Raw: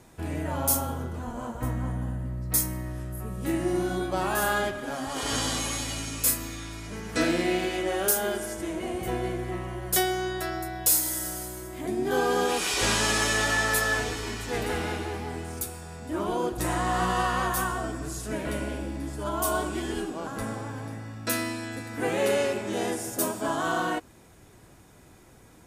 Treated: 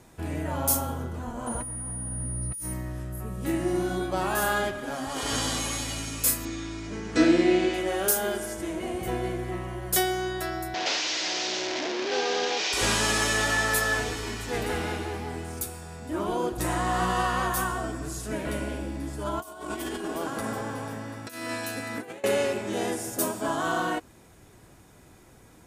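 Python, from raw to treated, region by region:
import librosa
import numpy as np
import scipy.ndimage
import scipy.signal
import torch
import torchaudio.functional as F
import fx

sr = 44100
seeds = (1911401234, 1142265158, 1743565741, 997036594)

y = fx.over_compress(x, sr, threshold_db=-34.0, ratio=-0.5, at=(1.46, 2.72), fade=0.02)
y = fx.dmg_tone(y, sr, hz=9600.0, level_db=-34.0, at=(1.46, 2.72), fade=0.02)
y = fx.chain(y, sr, fx.lowpass(hz=7600.0, slope=24),
    fx.peak_eq(hz=320.0, db=8.0, octaves=0.53), at=(6.45, 7.74))
y = fx.chain(y, sr, fx.delta_mod(bps=32000, step_db=-20.0),
    fx.highpass(hz=410.0, slope=12),
    fx.peak_eq(hz=1200.0, db=-8.0, octaves=0.73), at=(10.74, 12.73))
y = fx.chain(y, sr, fx.highpass(hz=180.0, slope=6),
    fx.echo_alternate(ms=184, hz=2200.0, feedback_pct=69, wet_db=-9.0),
    fx.over_compress(threshold_db=-33.0, ratio=-0.5), at=(19.39, 22.24))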